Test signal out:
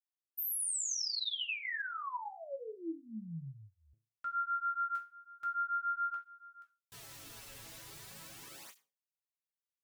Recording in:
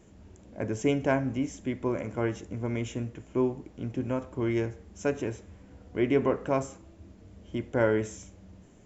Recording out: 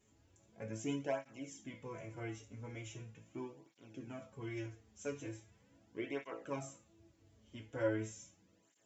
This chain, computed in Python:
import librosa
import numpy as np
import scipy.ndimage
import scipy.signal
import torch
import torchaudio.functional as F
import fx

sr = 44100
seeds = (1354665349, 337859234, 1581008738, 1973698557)

y = fx.high_shelf(x, sr, hz=2100.0, db=9.0)
y = fx.resonator_bank(y, sr, root=45, chord='major', decay_s=0.29)
y = fx.flanger_cancel(y, sr, hz=0.4, depth_ms=6.3)
y = y * librosa.db_to_amplitude(1.0)